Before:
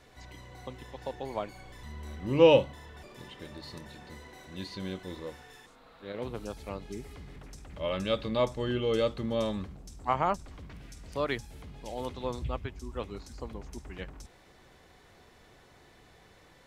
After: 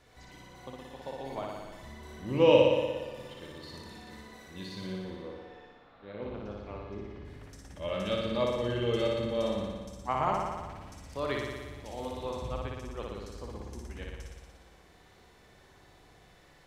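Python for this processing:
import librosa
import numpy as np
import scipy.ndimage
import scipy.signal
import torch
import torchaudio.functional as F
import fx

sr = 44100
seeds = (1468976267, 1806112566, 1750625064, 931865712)

y = fx.air_absorb(x, sr, metres=260.0, at=(4.86, 7.25))
y = fx.room_flutter(y, sr, wall_m=10.1, rt60_s=1.4)
y = y * librosa.db_to_amplitude(-4.0)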